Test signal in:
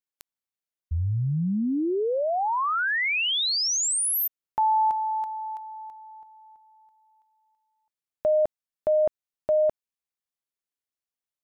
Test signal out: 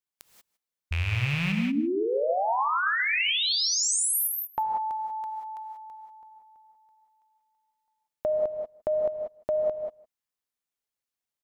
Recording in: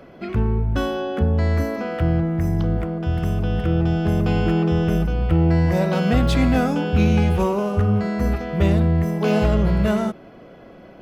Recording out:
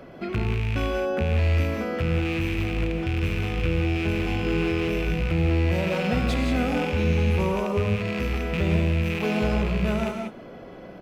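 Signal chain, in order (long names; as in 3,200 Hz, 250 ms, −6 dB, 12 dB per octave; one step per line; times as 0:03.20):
loose part that buzzes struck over −25 dBFS, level −16 dBFS
downward compressor 2 to 1, threshold −28 dBFS
on a send: single-tap delay 158 ms −21.5 dB
on the sum: reverb whose tail is shaped and stops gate 210 ms rising, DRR 2.5 dB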